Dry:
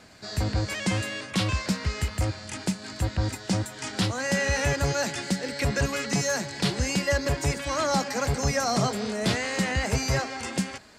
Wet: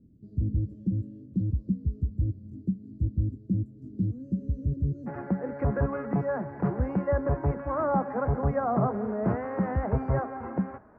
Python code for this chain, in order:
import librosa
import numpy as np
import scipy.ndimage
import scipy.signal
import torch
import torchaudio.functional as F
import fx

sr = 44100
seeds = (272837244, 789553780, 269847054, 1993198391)

y = fx.cheby2_lowpass(x, sr, hz=fx.steps((0.0, 790.0), (5.06, 3300.0)), order=4, stop_db=50)